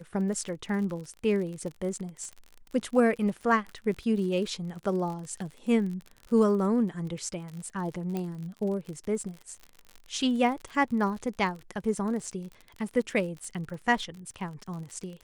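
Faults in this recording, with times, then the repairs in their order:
crackle 43/s -36 dBFS
8.17 pop -20 dBFS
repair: de-click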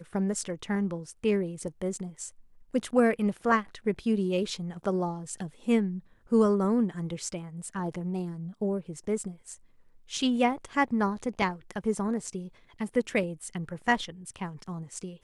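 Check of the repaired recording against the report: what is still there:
none

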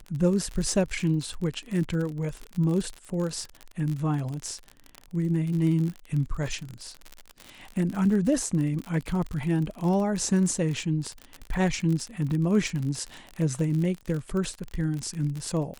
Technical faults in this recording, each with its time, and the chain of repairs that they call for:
crackle 46/s -30 dBFS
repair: de-click

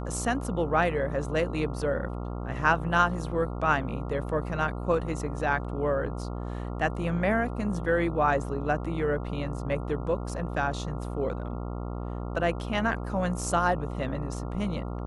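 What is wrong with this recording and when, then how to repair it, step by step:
buzz 60 Hz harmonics 23 -34 dBFS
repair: de-hum 60 Hz, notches 23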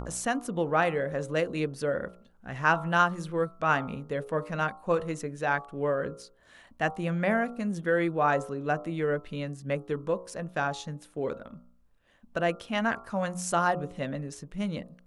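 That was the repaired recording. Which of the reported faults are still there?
none

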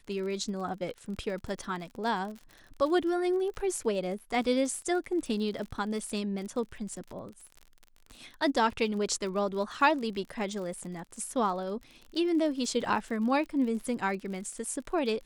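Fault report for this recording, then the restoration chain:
crackle 49/s -38 dBFS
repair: de-click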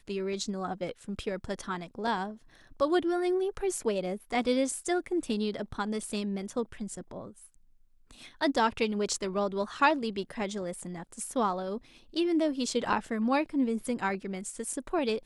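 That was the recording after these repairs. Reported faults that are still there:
none

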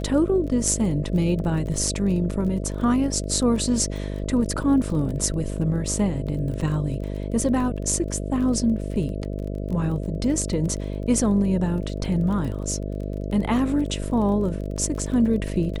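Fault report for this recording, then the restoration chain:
buzz 50 Hz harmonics 13 -29 dBFS
crackle 28/s -32 dBFS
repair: de-click; de-hum 50 Hz, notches 13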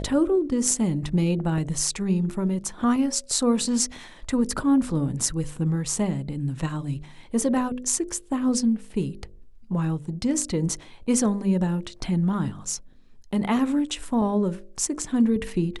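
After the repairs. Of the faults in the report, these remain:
none

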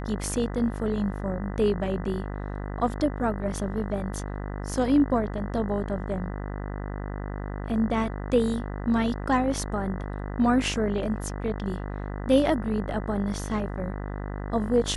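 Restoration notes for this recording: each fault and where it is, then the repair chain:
buzz 50 Hz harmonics 40 -33 dBFS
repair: de-hum 50 Hz, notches 40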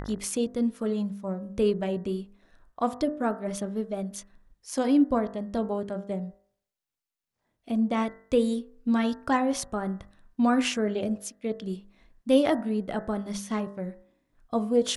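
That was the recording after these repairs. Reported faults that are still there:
none

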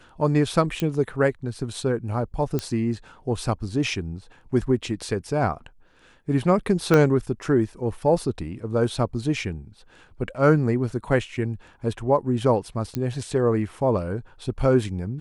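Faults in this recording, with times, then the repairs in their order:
0.8 pop -12 dBFS
2.59 pop -13 dBFS
6.94 pop -7 dBFS
12.95 pop -14 dBFS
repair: de-click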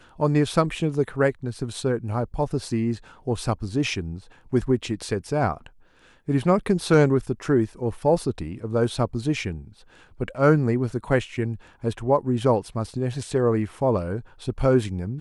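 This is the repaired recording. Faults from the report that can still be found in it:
6.94 pop

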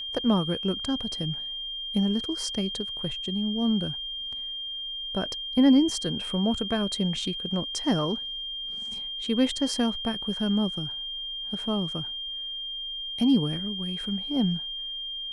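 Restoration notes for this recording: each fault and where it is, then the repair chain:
tone 3200 Hz -32 dBFS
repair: notch 3200 Hz, Q 30

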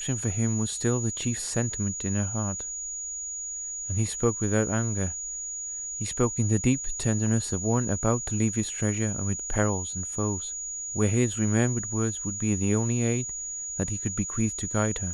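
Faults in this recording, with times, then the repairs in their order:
tone 6800 Hz -32 dBFS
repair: notch 6800 Hz, Q 30

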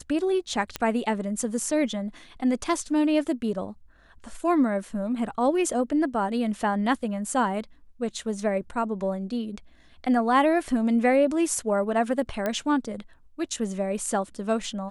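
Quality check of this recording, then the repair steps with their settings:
0.76 pop -12 dBFS
12.46 pop -14 dBFS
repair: de-click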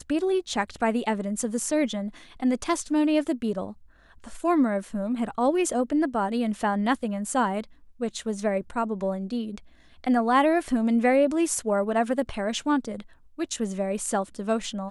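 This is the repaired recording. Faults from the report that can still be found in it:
none

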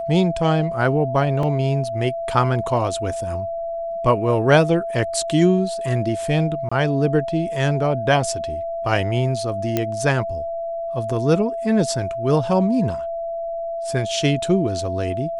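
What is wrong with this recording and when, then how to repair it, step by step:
tone 670 Hz -24 dBFS
1.43 gap 2.4 ms
6.69–6.71 gap 25 ms
9.77 pop -6 dBFS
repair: de-click; notch 670 Hz, Q 30; interpolate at 1.43, 2.4 ms; interpolate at 6.69, 25 ms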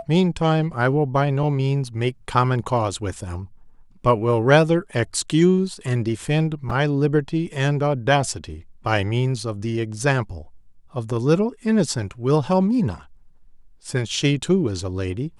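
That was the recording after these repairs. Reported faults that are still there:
none

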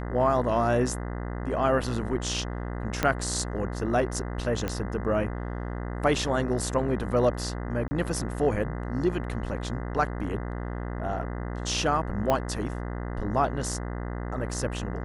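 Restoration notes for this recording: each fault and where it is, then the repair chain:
buzz 60 Hz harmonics 34 -33 dBFS
3.03 pop -9 dBFS
4.68 pop -15 dBFS
7.88–7.91 gap 30 ms
12.3 pop -11 dBFS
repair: de-click; de-hum 60 Hz, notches 34; interpolate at 7.88, 30 ms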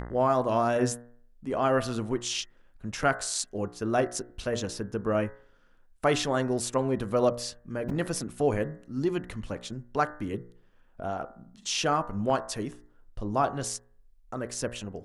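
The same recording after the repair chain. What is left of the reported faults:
3.03 pop
12.3 pop

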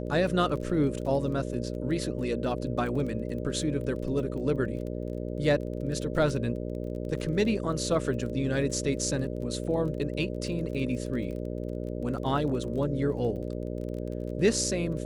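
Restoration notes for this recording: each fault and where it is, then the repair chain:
buzz 60 Hz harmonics 10 -34 dBFS
crackle 21/s -37 dBFS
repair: de-click; de-hum 60 Hz, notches 10

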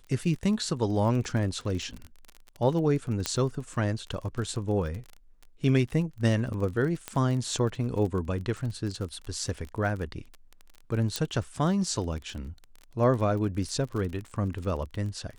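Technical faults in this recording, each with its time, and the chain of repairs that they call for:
crackle 28/s -34 dBFS
3.26 pop -11 dBFS
7.08 pop -16 dBFS
11.16 pop -13 dBFS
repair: de-click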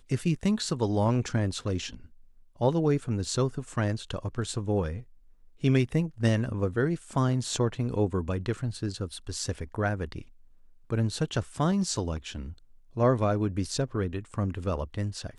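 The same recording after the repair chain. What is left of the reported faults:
3.26 pop

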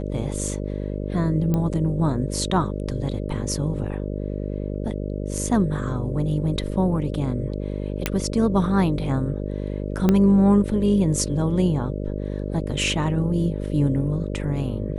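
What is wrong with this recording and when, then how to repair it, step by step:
buzz 50 Hz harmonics 12 -28 dBFS
1.54 pop -12 dBFS
8.06 pop -5 dBFS
10.09 pop -7 dBFS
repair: de-click; de-hum 50 Hz, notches 12

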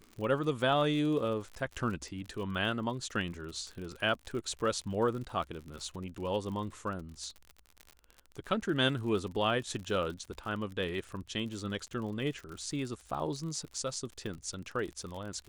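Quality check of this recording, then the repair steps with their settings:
crackle 50/s -39 dBFS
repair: de-click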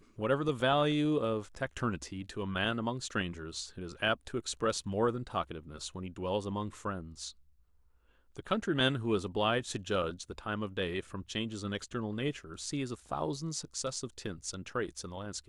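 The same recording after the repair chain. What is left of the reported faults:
none

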